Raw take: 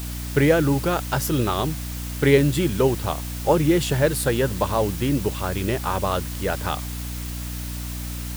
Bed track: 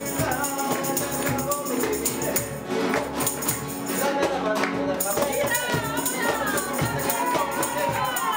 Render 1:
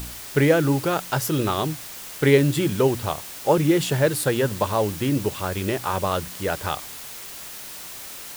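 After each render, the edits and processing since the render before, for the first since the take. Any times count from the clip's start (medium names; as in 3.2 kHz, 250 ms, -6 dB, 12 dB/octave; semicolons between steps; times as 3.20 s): de-hum 60 Hz, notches 5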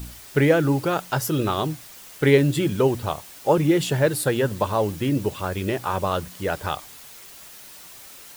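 noise reduction 7 dB, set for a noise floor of -38 dBFS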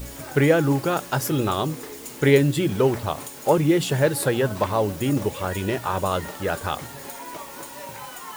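add bed track -13.5 dB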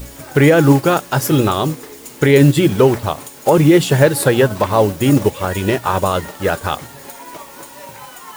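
loudness maximiser +11.5 dB; upward expansion 1.5:1, over -26 dBFS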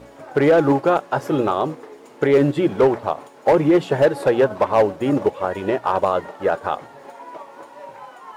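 band-pass filter 670 Hz, Q 0.9; overload inside the chain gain 8.5 dB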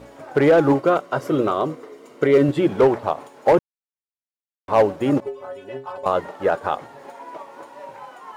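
0.74–2.49 s: comb of notches 840 Hz; 3.59–4.68 s: mute; 5.20–6.06 s: inharmonic resonator 130 Hz, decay 0.38 s, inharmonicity 0.008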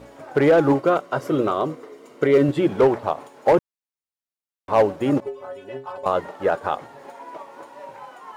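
trim -1 dB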